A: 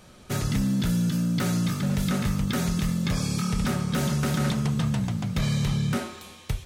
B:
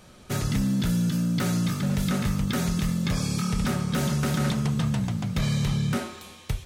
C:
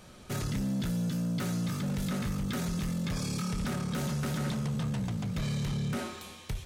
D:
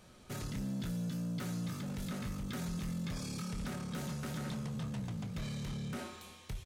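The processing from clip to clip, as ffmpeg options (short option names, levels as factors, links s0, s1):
-af anull
-filter_complex "[0:a]asplit=2[s0][s1];[s1]alimiter=level_in=1.41:limit=0.0631:level=0:latency=1:release=14,volume=0.708,volume=1.33[s2];[s0][s2]amix=inputs=2:normalize=0,asoftclip=type=tanh:threshold=0.133,volume=0.376"
-filter_complex "[0:a]asplit=2[s0][s1];[s1]adelay=24,volume=0.251[s2];[s0][s2]amix=inputs=2:normalize=0,volume=0.447"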